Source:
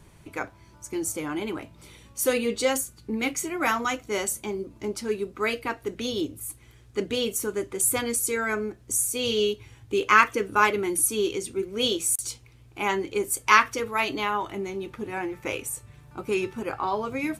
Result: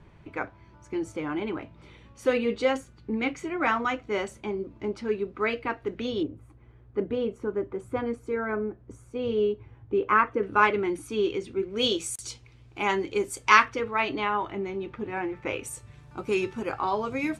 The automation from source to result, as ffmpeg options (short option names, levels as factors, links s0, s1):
-af "asetnsamples=n=441:p=0,asendcmd='6.23 lowpass f 1200;10.43 lowpass f 2800;11.76 lowpass f 5700;13.65 lowpass f 2900;15.63 lowpass f 7300',lowpass=2700"